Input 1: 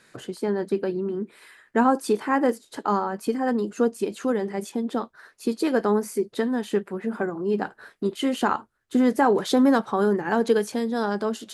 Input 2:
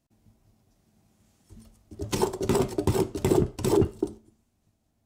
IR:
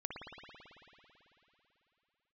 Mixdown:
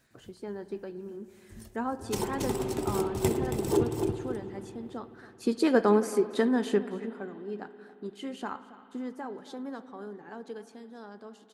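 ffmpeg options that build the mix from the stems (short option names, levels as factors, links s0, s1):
-filter_complex "[0:a]lowpass=9400,volume=0.794,afade=t=in:st=4.96:d=0.69:silence=0.237137,afade=t=out:st=6.66:d=0.5:silence=0.223872,afade=t=out:st=8.52:d=0.77:silence=0.446684,asplit=4[s0][s1][s2][s3];[s1]volume=0.266[s4];[s2]volume=0.141[s5];[1:a]tremolo=f=3.7:d=0.57,highshelf=f=6600:g=6.5,volume=1.26,asplit=3[s6][s7][s8];[s7]volume=0.355[s9];[s8]volume=0.251[s10];[s3]apad=whole_len=223016[s11];[s6][s11]sidechaincompress=threshold=0.00282:ratio=4:attack=16:release=312[s12];[2:a]atrim=start_sample=2205[s13];[s4][s9]amix=inputs=2:normalize=0[s14];[s14][s13]afir=irnorm=-1:irlink=0[s15];[s5][s10]amix=inputs=2:normalize=0,aecho=0:1:276:1[s16];[s0][s12][s15][s16]amix=inputs=4:normalize=0"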